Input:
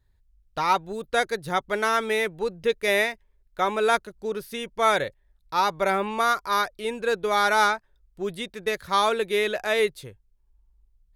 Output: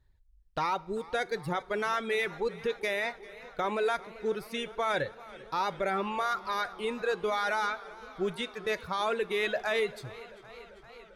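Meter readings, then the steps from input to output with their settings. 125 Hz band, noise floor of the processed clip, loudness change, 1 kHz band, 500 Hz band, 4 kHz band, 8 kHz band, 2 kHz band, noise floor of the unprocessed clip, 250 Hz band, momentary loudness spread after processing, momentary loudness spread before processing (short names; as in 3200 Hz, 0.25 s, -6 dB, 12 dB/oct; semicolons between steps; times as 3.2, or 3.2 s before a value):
-2.5 dB, -59 dBFS, -7.0 dB, -8.0 dB, -6.0 dB, -7.5 dB, -11.5 dB, -7.0 dB, -65 dBFS, -4.5 dB, 15 LU, 10 LU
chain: reverb removal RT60 1.4 s; high shelf 8700 Hz -11.5 dB; limiter -21 dBFS, peak gain reduction 11.5 dB; two-slope reverb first 0.37 s, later 4.7 s, from -18 dB, DRR 16 dB; warbling echo 0.393 s, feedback 76%, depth 75 cents, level -19.5 dB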